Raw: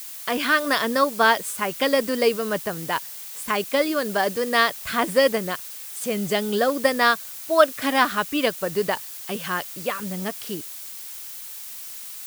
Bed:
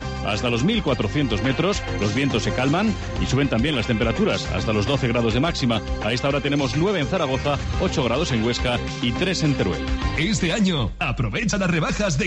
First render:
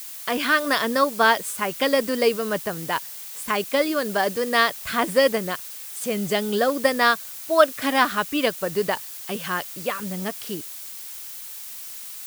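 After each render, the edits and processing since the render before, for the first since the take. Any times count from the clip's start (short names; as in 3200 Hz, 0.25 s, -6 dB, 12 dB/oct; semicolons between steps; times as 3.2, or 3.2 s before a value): nothing audible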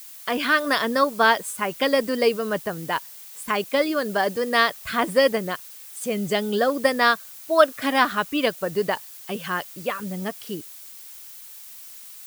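denoiser 6 dB, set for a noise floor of -37 dBFS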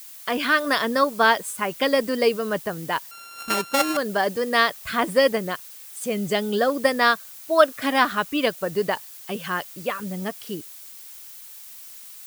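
3.11–3.97 sample sorter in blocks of 32 samples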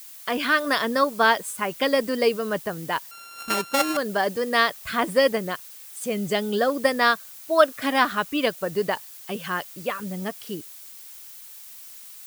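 gain -1 dB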